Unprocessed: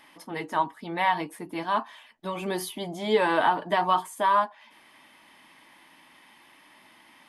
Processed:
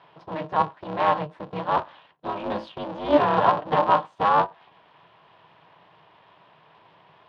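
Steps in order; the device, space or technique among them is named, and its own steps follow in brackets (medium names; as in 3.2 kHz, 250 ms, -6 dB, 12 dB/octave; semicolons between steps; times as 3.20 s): ring modulator pedal into a guitar cabinet (polarity switched at an audio rate 150 Hz; cabinet simulation 94–3700 Hz, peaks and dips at 110 Hz +4 dB, 160 Hz +9 dB, 310 Hz +6 dB, 610 Hz +10 dB, 970 Hz +10 dB, 2.1 kHz -7 dB); trim -2.5 dB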